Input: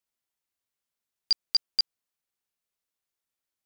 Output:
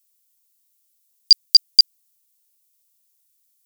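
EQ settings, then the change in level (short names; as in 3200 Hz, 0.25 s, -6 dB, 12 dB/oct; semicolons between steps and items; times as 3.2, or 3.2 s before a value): differentiator; high shelf 2200 Hz +10 dB; +8.5 dB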